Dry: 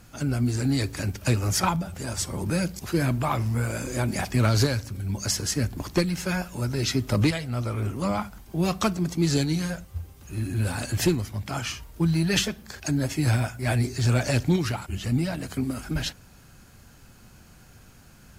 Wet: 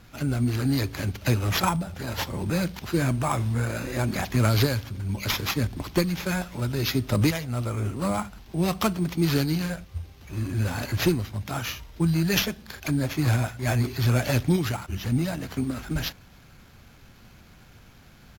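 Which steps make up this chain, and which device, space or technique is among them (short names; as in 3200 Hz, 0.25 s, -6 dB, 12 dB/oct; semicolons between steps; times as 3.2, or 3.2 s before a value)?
crushed at another speed (playback speed 1.25×; sample-and-hold 4×; playback speed 0.8×)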